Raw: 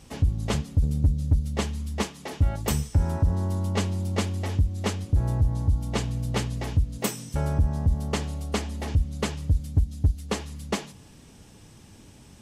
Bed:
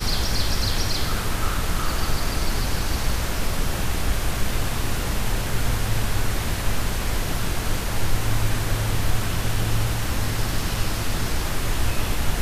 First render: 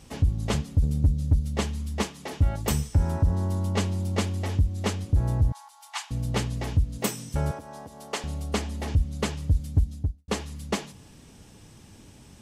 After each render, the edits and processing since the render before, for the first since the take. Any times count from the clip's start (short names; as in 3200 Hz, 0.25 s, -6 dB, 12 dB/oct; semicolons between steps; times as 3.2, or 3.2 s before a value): 5.52–6.11 steep high-pass 770 Hz 72 dB/oct; 7.51–8.24 HPF 480 Hz; 9.84–10.28 studio fade out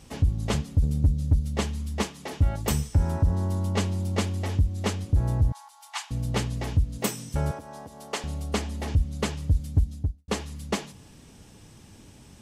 nothing audible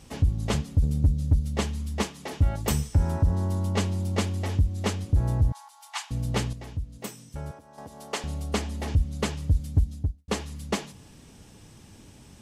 6.53–7.78 gain -9.5 dB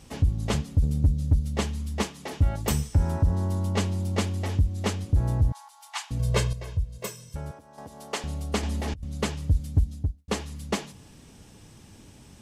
6.19–7.36 comb 1.9 ms, depth 100%; 8.63–9.03 negative-ratio compressor -32 dBFS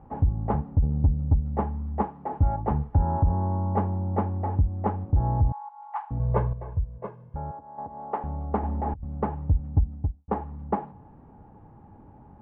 LPF 1300 Hz 24 dB/oct; bell 830 Hz +12 dB 0.3 oct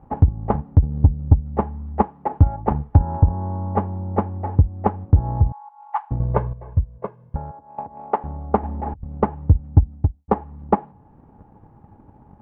transient shaper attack +10 dB, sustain -2 dB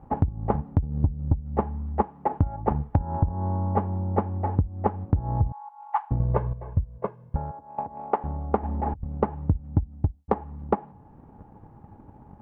compressor 12:1, threshold -18 dBFS, peak gain reduction 12.5 dB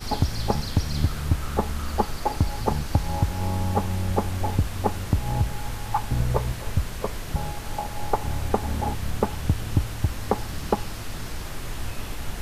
add bed -9 dB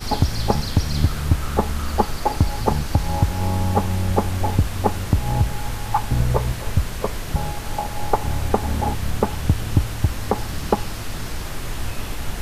gain +4.5 dB; limiter -3 dBFS, peak gain reduction 2.5 dB